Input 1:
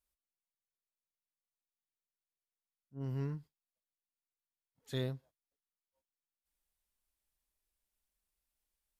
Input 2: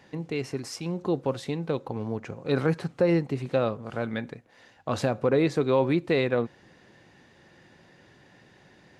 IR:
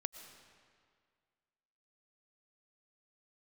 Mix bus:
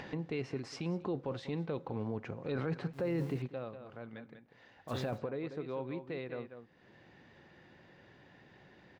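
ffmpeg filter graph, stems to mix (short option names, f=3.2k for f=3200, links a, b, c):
-filter_complex "[0:a]acrusher=bits=8:mix=0:aa=0.000001,volume=-5dB,asplit=2[a][b];[1:a]lowpass=3.8k,acompressor=mode=upward:threshold=-30dB:ratio=2.5,volume=-5dB,asplit=2[c][d];[d]volume=-21dB[e];[b]apad=whole_len=396658[f];[c][f]sidechaingate=range=-12dB:threshold=-57dB:ratio=16:detection=peak[g];[e]aecho=0:1:192:1[h];[a][g][h]amix=inputs=3:normalize=0,alimiter=level_in=2.5dB:limit=-24dB:level=0:latency=1:release=11,volume=-2.5dB"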